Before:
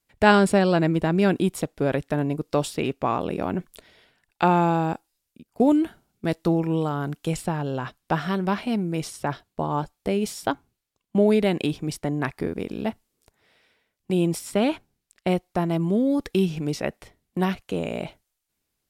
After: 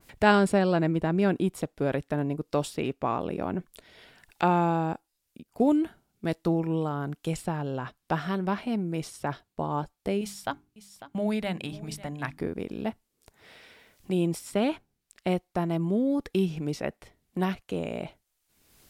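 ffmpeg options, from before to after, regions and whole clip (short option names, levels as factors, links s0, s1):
-filter_complex "[0:a]asettb=1/sr,asplit=3[s0][s1][s2];[s0]atrim=end=10.214[s3];[s1]atrim=start=10.21:end=12.38,asetpts=PTS-STARTPTS,afade=t=in:d=0.004:c=qsin,afade=t=out:st=2.166:d=0.004:c=qsin,equalizer=f=380:t=o:w=0.89:g=-12,bandreject=f=50:t=h:w=6,bandreject=f=100:t=h:w=6,bandreject=f=150:t=h:w=6,bandreject=f=200:t=h:w=6,bandreject=f=250:t=h:w=6,bandreject=f=300:t=h:w=6,bandreject=f=350:t=h:w=6,bandreject=f=400:t=h:w=6,aecho=1:1:549:0.119,atrim=end_sample=95697[s4];[s2]atrim=start=12.376[s5];[s3][s4]acrossfade=d=0.004:c1=hsin:c2=qsin[s6];[s6][s5]acrossfade=d=0.004:c1=qsin:c2=hsin,acompressor=mode=upward:threshold=0.02:ratio=2.5,adynamicequalizer=threshold=0.00891:dfrequency=2200:dqfactor=0.7:tfrequency=2200:tqfactor=0.7:attack=5:release=100:ratio=0.375:range=2.5:mode=cutabove:tftype=highshelf,volume=0.631"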